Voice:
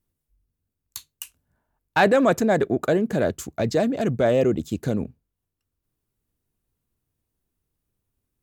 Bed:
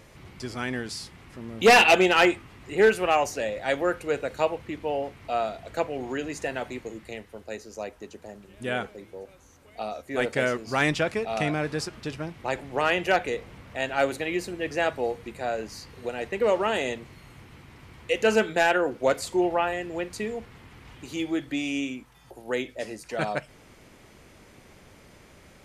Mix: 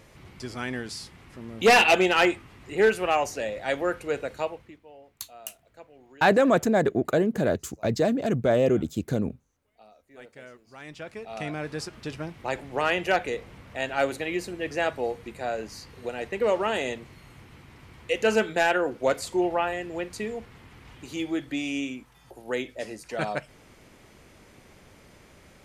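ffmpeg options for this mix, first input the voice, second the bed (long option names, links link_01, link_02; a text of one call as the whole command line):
ffmpeg -i stem1.wav -i stem2.wav -filter_complex "[0:a]adelay=4250,volume=-2dB[link_01];[1:a]volume=18.5dB,afade=type=out:start_time=4.22:duration=0.59:silence=0.105925,afade=type=in:start_time=10.84:duration=1.33:silence=0.1[link_02];[link_01][link_02]amix=inputs=2:normalize=0" out.wav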